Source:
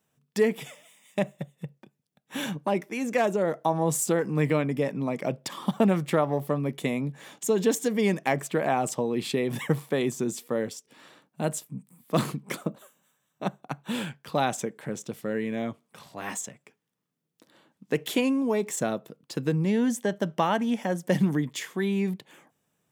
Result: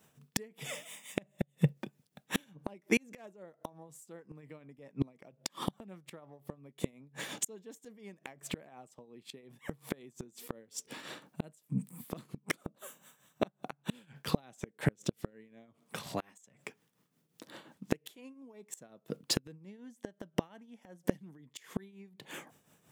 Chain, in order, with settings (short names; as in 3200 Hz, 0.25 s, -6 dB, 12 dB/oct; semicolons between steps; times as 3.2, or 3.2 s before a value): flipped gate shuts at -23 dBFS, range -35 dB; dynamic EQ 970 Hz, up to -4 dB, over -57 dBFS, Q 0.97; tremolo triangle 5.6 Hz, depth 70%; gain +11.5 dB